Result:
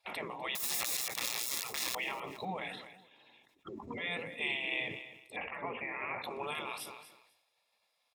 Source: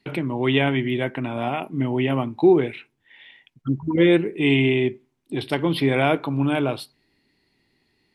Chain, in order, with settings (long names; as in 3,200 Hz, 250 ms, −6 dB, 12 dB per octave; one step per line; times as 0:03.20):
0:00.55–0:01.95: wrap-around overflow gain 22 dB
0:05.36–0:06.23: Butterworth low-pass 2,600 Hz 96 dB per octave
brickwall limiter −18 dBFS, peak gain reduction 12 dB
gate on every frequency bin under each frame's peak −15 dB weak
notch comb filter 1,500 Hz
repeating echo 250 ms, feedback 29%, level −21.5 dB
level that may fall only so fast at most 56 dB per second